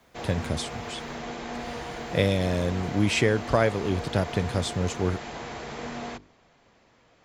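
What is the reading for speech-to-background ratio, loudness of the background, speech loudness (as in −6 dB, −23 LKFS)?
9.5 dB, −36.5 LKFS, −27.0 LKFS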